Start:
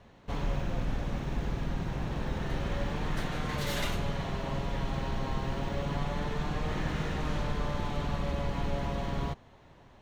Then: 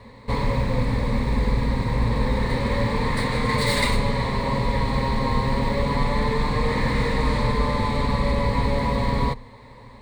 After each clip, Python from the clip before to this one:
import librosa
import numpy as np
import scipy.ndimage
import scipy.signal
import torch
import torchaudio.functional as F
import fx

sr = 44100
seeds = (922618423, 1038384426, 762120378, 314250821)

y = fx.ripple_eq(x, sr, per_octave=0.96, db=14)
y = y * librosa.db_to_amplitude(9.0)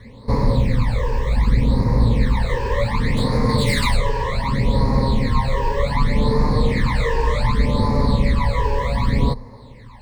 y = fx.phaser_stages(x, sr, stages=12, low_hz=210.0, high_hz=3000.0, hz=0.66, feedback_pct=40)
y = y * librosa.db_to_amplitude(4.0)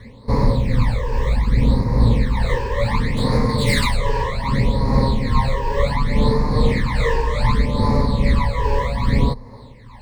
y = x * (1.0 - 0.39 / 2.0 + 0.39 / 2.0 * np.cos(2.0 * np.pi * 2.4 * (np.arange(len(x)) / sr)))
y = y * librosa.db_to_amplitude(2.0)